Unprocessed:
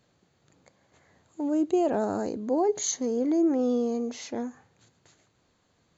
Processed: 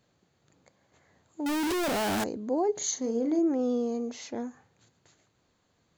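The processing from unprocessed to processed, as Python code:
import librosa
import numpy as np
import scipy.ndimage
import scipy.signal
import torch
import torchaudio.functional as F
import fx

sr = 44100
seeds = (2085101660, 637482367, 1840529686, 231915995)

y = fx.clip_1bit(x, sr, at=(1.46, 2.24))
y = fx.doubler(y, sr, ms=39.0, db=-8.0, at=(2.77, 3.39))
y = F.gain(torch.from_numpy(y), -2.5).numpy()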